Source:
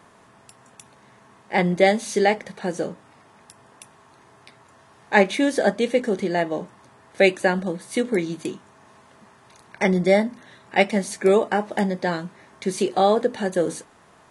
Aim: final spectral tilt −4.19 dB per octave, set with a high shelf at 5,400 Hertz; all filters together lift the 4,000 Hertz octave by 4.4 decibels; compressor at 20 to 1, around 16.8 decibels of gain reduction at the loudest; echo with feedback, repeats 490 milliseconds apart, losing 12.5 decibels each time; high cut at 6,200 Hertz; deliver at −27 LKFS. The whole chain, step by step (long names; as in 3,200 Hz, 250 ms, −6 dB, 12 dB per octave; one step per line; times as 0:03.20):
low-pass filter 6,200 Hz
parametric band 4,000 Hz +3.5 dB
high-shelf EQ 5,400 Hz +7 dB
downward compressor 20 to 1, threshold −27 dBFS
repeating echo 490 ms, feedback 24%, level −12.5 dB
level +6.5 dB